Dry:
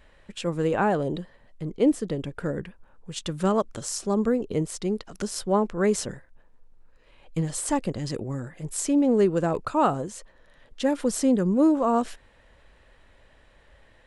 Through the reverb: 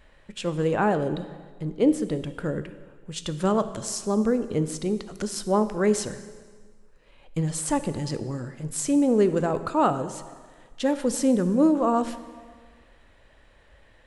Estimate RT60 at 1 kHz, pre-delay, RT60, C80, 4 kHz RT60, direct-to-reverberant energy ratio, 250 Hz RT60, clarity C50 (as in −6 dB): 1.6 s, 10 ms, 1.6 s, 14.0 dB, 1.5 s, 11.0 dB, 1.6 s, 12.5 dB